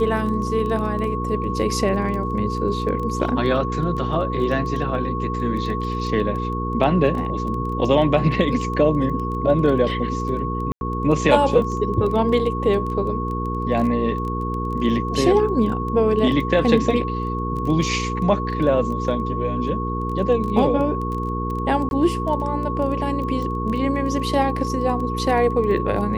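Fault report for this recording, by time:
crackle 13 per s -27 dBFS
hum 60 Hz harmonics 8 -26 dBFS
whine 1.1 kHz -27 dBFS
10.72–10.81 s: dropout 91 ms
21.89–21.91 s: dropout 21 ms

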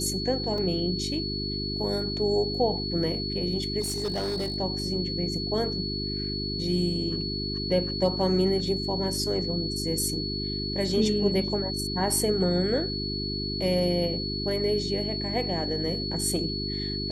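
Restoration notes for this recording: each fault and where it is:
hum 50 Hz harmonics 8 -33 dBFS
whine 4.4 kHz -32 dBFS
0.58 s: dropout 2.7 ms
3.80–4.56 s: clipped -25 dBFS

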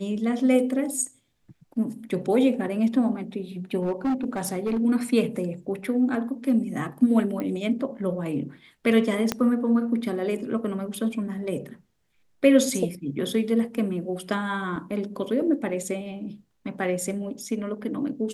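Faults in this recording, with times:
3.82–4.79 s: clipped -21 dBFS
7.40 s: pop -19 dBFS
9.32 s: pop -9 dBFS
14.76 s: dropout 4.4 ms

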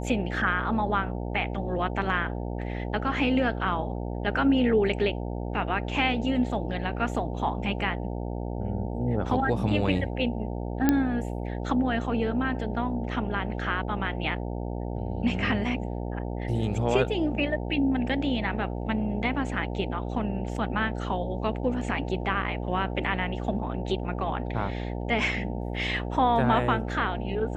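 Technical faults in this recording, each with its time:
buzz 60 Hz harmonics 15 -32 dBFS
10.89 s: pop -8 dBFS

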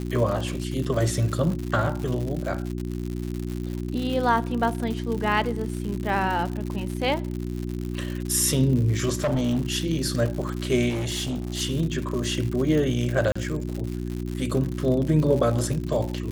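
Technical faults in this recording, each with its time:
crackle 140 per s -29 dBFS
hum 60 Hz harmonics 6 -30 dBFS
9.15–9.74 s: clipped -19.5 dBFS
10.89–11.62 s: clipped -24 dBFS
13.32–13.36 s: dropout 35 ms

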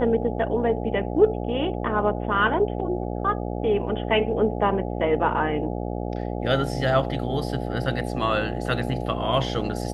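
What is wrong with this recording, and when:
buzz 60 Hz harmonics 14 -29 dBFS

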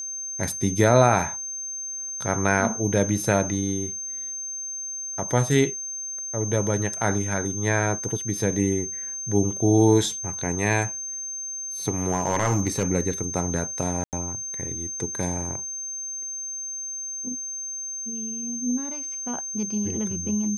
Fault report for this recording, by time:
whine 6.3 kHz -30 dBFS
12.11–12.88 s: clipped -16 dBFS
14.04–14.13 s: dropout 88 ms

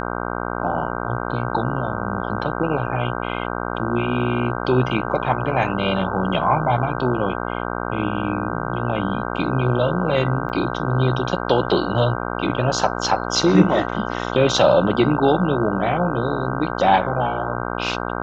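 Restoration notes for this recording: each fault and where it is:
buzz 60 Hz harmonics 26 -26 dBFS
10.49–10.50 s: dropout 8.3 ms

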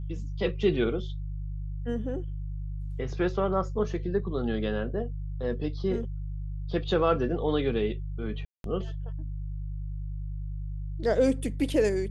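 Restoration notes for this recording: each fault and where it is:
hum 50 Hz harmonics 3 -34 dBFS
8.45–8.64 s: dropout 192 ms

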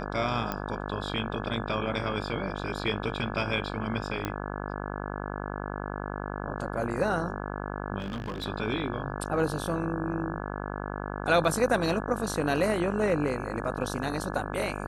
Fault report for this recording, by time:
buzz 50 Hz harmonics 34 -35 dBFS
0.52 s: pop -16 dBFS
4.25 s: pop -16 dBFS
8.00–8.46 s: clipped -29.5 dBFS

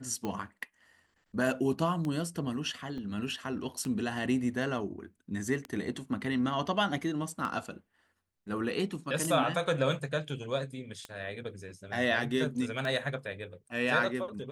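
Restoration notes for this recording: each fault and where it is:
tick 33 1/3 rpm -22 dBFS
2.98 s: dropout 2.6 ms

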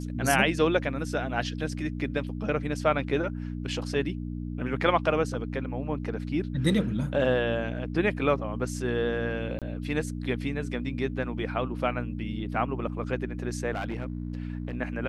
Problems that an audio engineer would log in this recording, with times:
hum 60 Hz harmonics 5 -34 dBFS
9.59–9.62 s: dropout 27 ms
13.73–14.75 s: clipped -27 dBFS

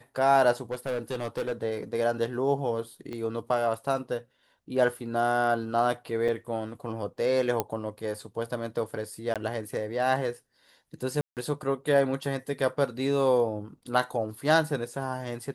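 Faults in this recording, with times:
0.71–1.53 s: clipped -26 dBFS
3.13 s: pop -25 dBFS
6.28–6.29 s: dropout 5.5 ms
7.60 s: pop -11 dBFS
9.34–9.36 s: dropout 17 ms
11.21–11.37 s: dropout 158 ms

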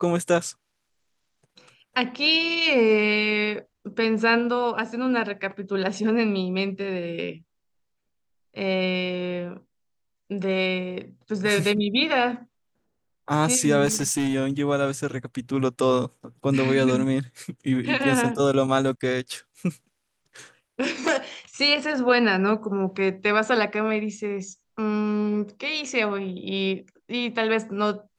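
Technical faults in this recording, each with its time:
13.85–14.34 s: clipped -20 dBFS
21.08 s: dropout 3.1 ms

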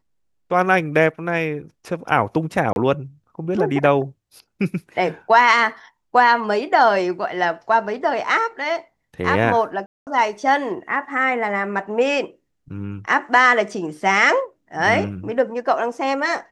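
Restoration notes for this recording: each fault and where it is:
2.73–2.76 s: dropout 31 ms
9.86–10.07 s: dropout 208 ms

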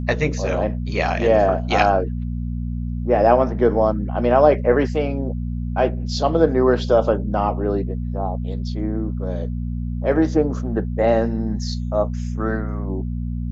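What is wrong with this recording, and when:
hum 60 Hz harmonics 4 -25 dBFS

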